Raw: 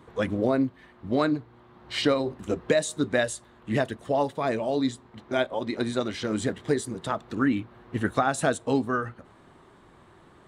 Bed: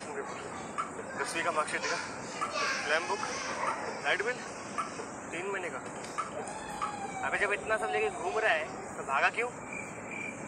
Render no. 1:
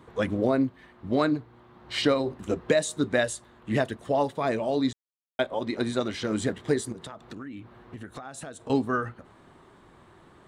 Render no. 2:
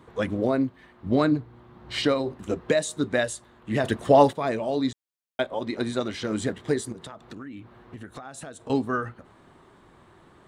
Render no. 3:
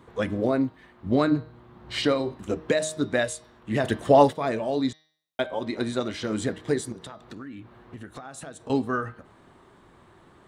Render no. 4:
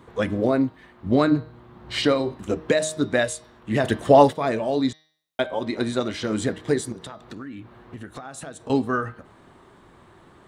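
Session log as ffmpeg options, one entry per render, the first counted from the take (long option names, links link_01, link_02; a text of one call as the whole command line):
ffmpeg -i in.wav -filter_complex "[0:a]asettb=1/sr,asplit=3[link_01][link_02][link_03];[link_01]atrim=end=6.924[link_04];[link_02]atrim=start=6.92:end=8.7,asetpts=PTS-STARTPTS,afade=type=in:duration=0.004:curve=qsin,afade=type=out:start_time=1.776:duration=0.004:curve=qsin,acompressor=threshold=-36dB:ratio=10:attack=3.2:release=140:knee=1:detection=peak[link_05];[link_03]atrim=start=8.696[link_06];[link_04][link_05]acrossfade=duration=0.004:curve1=hsin:curve2=qsin[link_07];[link_07][link_06]acrossfade=duration=0.004:curve1=qsin:curve2=hsin,asplit=3[link_08][link_09][link_10];[link_08]atrim=end=4.93,asetpts=PTS-STARTPTS,afade=type=out:start_time=4.926:duration=0.004:curve=hsin[link_11];[link_09]atrim=start=4.93:end=5.39,asetpts=PTS-STARTPTS,volume=0[link_12];[link_10]atrim=start=5.39,asetpts=PTS-STARTPTS,afade=type=in:duration=0.004:curve=hsin[link_13];[link_11][link_12][link_13]concat=n=3:v=0:a=1" out.wav
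ffmpeg -i in.wav -filter_complex "[0:a]asettb=1/sr,asplit=3[link_01][link_02][link_03];[link_01]atrim=end=1.064[link_04];[link_02]atrim=start=1.06:end=2.02,asetpts=PTS-STARTPTS,afade=type=in:duration=0.004:curve=qsin,afade=type=out:start_time=0.956:duration=0.004:curve=qsin,lowshelf=frequency=260:gain=7.5[link_05];[link_03]atrim=start=2.016[link_06];[link_04][link_05]acrossfade=duration=0.004:curve1=hsin:curve2=qsin[link_07];[link_07][link_06]acrossfade=duration=0.004:curve1=qsin:curve2=hsin,asplit=3[link_08][link_09][link_10];[link_08]atrim=end=3.842[link_11];[link_09]atrim=start=3.838:end=4.332,asetpts=PTS-STARTPTS,volume=9dB[link_12];[link_10]atrim=start=4.328[link_13];[link_11][link_12]acrossfade=duration=0.004:curve1=hsin:curve2=hsin[link_14];[link_14][link_13]acrossfade=duration=0.004:curve1=hsin:curve2=hsin" out.wav
ffmpeg -i in.wav -af "bandreject=frequency=156.1:width_type=h:width=4,bandreject=frequency=312.2:width_type=h:width=4,bandreject=frequency=468.3:width_type=h:width=4,bandreject=frequency=624.4:width_type=h:width=4,bandreject=frequency=780.5:width_type=h:width=4,bandreject=frequency=936.6:width_type=h:width=4,bandreject=frequency=1092.7:width_type=h:width=4,bandreject=frequency=1248.8:width_type=h:width=4,bandreject=frequency=1404.9:width_type=h:width=4,bandreject=frequency=1561:width_type=h:width=4,bandreject=frequency=1717.1:width_type=h:width=4,bandreject=frequency=1873.2:width_type=h:width=4,bandreject=frequency=2029.3:width_type=h:width=4,bandreject=frequency=2185.4:width_type=h:width=4,bandreject=frequency=2341.5:width_type=h:width=4,bandreject=frequency=2497.6:width_type=h:width=4,bandreject=frequency=2653.7:width_type=h:width=4,bandreject=frequency=2809.8:width_type=h:width=4,bandreject=frequency=2965.9:width_type=h:width=4,bandreject=frequency=3122:width_type=h:width=4,bandreject=frequency=3278.1:width_type=h:width=4,bandreject=frequency=3434.2:width_type=h:width=4,bandreject=frequency=3590.3:width_type=h:width=4,bandreject=frequency=3746.4:width_type=h:width=4,bandreject=frequency=3902.5:width_type=h:width=4,bandreject=frequency=4058.6:width_type=h:width=4,bandreject=frequency=4214.7:width_type=h:width=4,bandreject=frequency=4370.8:width_type=h:width=4,bandreject=frequency=4526.9:width_type=h:width=4,bandreject=frequency=4683:width_type=h:width=4,bandreject=frequency=4839.1:width_type=h:width=4,bandreject=frequency=4995.2:width_type=h:width=4,bandreject=frequency=5151.3:width_type=h:width=4,bandreject=frequency=5307.4:width_type=h:width=4,bandreject=frequency=5463.5:width_type=h:width=4,bandreject=frequency=5619.6:width_type=h:width=4,bandreject=frequency=5775.7:width_type=h:width=4,bandreject=frequency=5931.8:width_type=h:width=4" out.wav
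ffmpeg -i in.wav -af "volume=3dB,alimiter=limit=-2dB:level=0:latency=1" out.wav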